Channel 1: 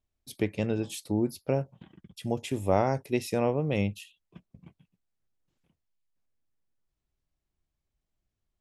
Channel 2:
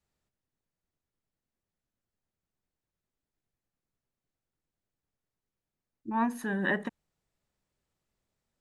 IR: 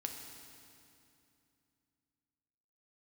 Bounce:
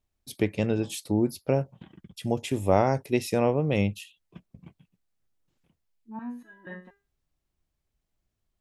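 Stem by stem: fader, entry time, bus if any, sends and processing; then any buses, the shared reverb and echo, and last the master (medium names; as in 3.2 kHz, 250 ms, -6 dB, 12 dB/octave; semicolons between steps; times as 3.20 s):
+3.0 dB, 0.00 s, no send, none
-1.0 dB, 0.00 s, no send, treble shelf 3.4 kHz -11 dB; resonator arpeggio 4.2 Hz 100–400 Hz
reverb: none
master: none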